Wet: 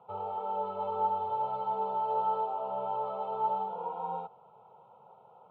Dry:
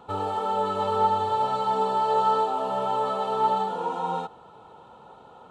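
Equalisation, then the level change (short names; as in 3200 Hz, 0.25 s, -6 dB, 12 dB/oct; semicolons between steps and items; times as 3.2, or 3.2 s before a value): HPF 120 Hz 24 dB/oct; LPF 2500 Hz 24 dB/oct; fixed phaser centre 700 Hz, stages 4; -6.0 dB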